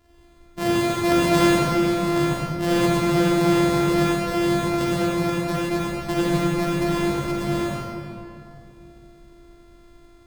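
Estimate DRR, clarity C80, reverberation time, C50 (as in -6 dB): -7.0 dB, -3.0 dB, 2.7 s, -5.5 dB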